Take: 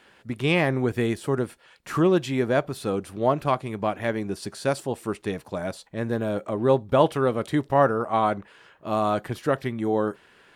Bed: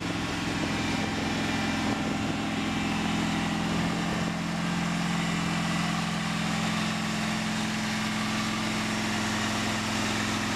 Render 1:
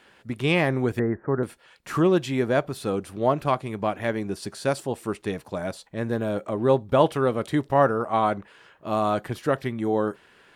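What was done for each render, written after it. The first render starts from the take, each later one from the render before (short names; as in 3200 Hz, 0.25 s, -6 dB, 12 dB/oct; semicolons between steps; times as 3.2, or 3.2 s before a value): 0.99–1.43 steep low-pass 1900 Hz 72 dB/oct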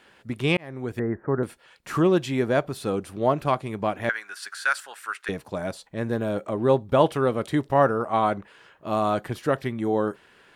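0.57–1.2 fade in; 4.09–5.29 resonant high-pass 1500 Hz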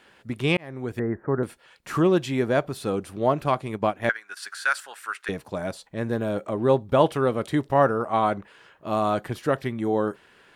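3.67–4.37 transient shaper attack +4 dB, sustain -8 dB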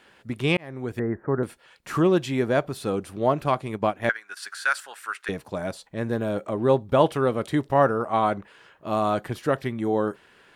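nothing audible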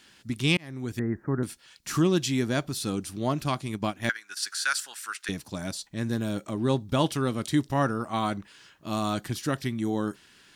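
EQ curve 300 Hz 0 dB, 470 Hz -11 dB, 2400 Hz -1 dB, 5700 Hz +11 dB, 9000 Hz +7 dB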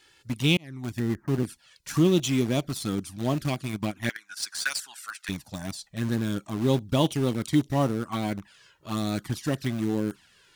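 envelope flanger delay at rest 2.4 ms, full sweep at -21.5 dBFS; in parallel at -9.5 dB: bit-crush 5-bit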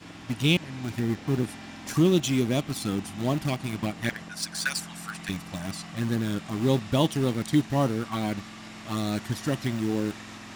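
add bed -14 dB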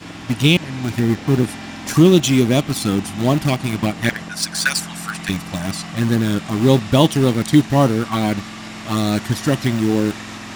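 gain +10 dB; limiter -1 dBFS, peak gain reduction 2.5 dB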